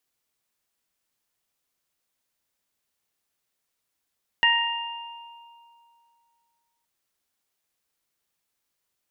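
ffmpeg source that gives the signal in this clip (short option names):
-f lavfi -i "aevalsrc='0.0708*pow(10,-3*t/2.55)*sin(2*PI*935*t)+0.141*pow(10,-3*t/0.86)*sin(2*PI*1870*t)+0.126*pow(10,-3*t/1.64)*sin(2*PI*2805*t)':d=2.42:s=44100"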